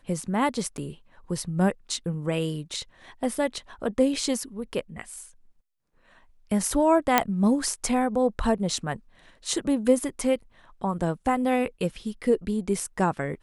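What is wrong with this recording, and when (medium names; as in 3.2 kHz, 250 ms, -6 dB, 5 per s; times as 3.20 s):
0.77–0.78 s: dropout 9.1 ms
7.18 s: pop -3 dBFS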